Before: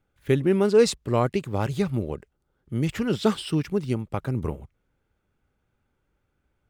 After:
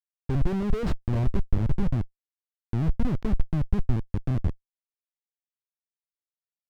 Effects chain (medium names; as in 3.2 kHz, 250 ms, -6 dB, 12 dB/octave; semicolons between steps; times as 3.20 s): Schmitt trigger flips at -24.5 dBFS; RIAA curve playback; trim -6.5 dB